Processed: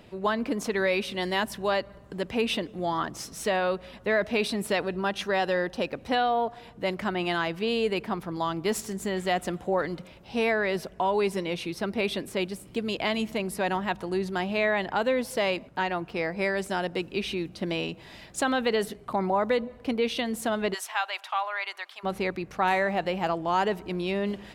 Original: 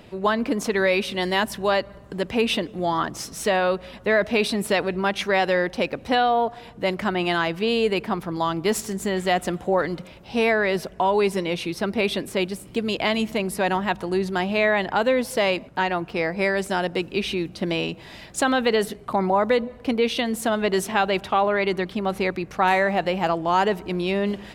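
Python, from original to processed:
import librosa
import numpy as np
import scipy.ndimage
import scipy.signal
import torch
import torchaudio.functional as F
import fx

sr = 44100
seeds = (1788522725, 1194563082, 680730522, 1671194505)

y = fx.notch(x, sr, hz=2200.0, q=6.3, at=(4.85, 5.9))
y = fx.highpass(y, sr, hz=830.0, slope=24, at=(20.73, 22.03), fade=0.02)
y = F.gain(torch.from_numpy(y), -5.0).numpy()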